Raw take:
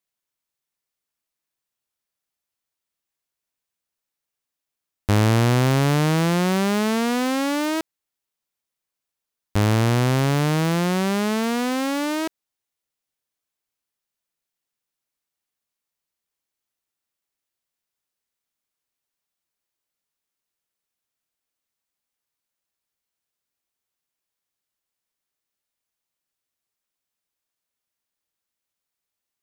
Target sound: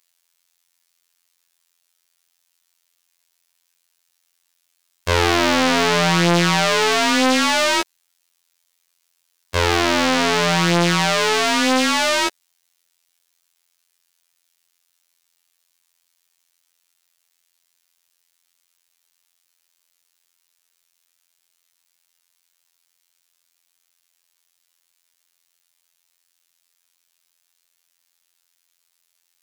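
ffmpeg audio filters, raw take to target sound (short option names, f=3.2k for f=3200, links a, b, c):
-filter_complex "[0:a]highshelf=f=2.6k:g=12,afftfilt=real='hypot(re,im)*cos(PI*b)':imag='0':win_size=2048:overlap=0.75,asplit=2[a][b];[b]highpass=f=720:p=1,volume=13dB,asoftclip=type=tanh:threshold=-3.5dB[c];[a][c]amix=inputs=2:normalize=0,lowpass=f=5.6k:p=1,volume=-6dB,acontrast=58"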